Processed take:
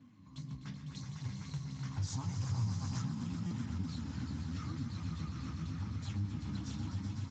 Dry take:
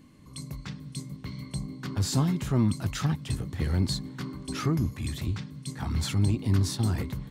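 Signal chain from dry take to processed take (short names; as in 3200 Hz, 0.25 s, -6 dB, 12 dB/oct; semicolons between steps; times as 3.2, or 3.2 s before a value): elliptic band-stop 290–830 Hz, stop band 70 dB; high shelf 3000 Hz -5.5 dB; swelling echo 0.126 s, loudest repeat 5, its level -6.5 dB; flange 0.83 Hz, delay 7.7 ms, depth 8.3 ms, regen -11%; echo 0.155 s -18.5 dB; compressor 2.5:1, threshold -39 dBFS, peak gain reduction 13.5 dB; 0.96–3.02 fifteen-band EQ 100 Hz +7 dB, 250 Hz -7 dB, 630 Hz +11 dB, 6300 Hz +7 dB; stuck buffer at 3.46, samples 256, times 8; gain -1 dB; Speex 13 kbps 16000 Hz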